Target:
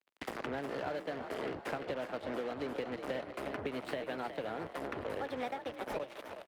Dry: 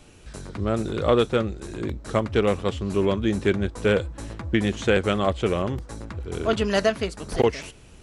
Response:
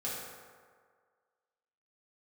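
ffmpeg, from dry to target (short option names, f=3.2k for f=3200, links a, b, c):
-filter_complex "[0:a]asplit=2[a][b];[1:a]atrim=start_sample=2205,lowpass=2.2k,adelay=95[c];[b][c]afir=irnorm=-1:irlink=0,volume=-26dB[d];[a][d]amix=inputs=2:normalize=0,acompressor=threshold=-35dB:ratio=3,asetrate=54684,aresample=44100,bandreject=f=60:t=h:w=6,bandreject=f=120:t=h:w=6,bandreject=f=180:t=h:w=6,acrusher=bits=5:mix=0:aa=0.5,acrossover=split=250 3400:gain=0.0631 1 0.158[e][f][g];[e][f][g]amix=inputs=3:normalize=0,acrossover=split=150[h][i];[i]acompressor=threshold=-45dB:ratio=6[j];[h][j]amix=inputs=2:normalize=0,asplit=6[k][l][m][n][o][p];[l]adelay=364,afreqshift=47,volume=-9dB[q];[m]adelay=728,afreqshift=94,volume=-16.5dB[r];[n]adelay=1092,afreqshift=141,volume=-24.1dB[s];[o]adelay=1456,afreqshift=188,volume=-31.6dB[t];[p]adelay=1820,afreqshift=235,volume=-39.1dB[u];[k][q][r][s][t][u]amix=inputs=6:normalize=0,volume=8.5dB" -ar 48000 -c:a libopus -b:a 48k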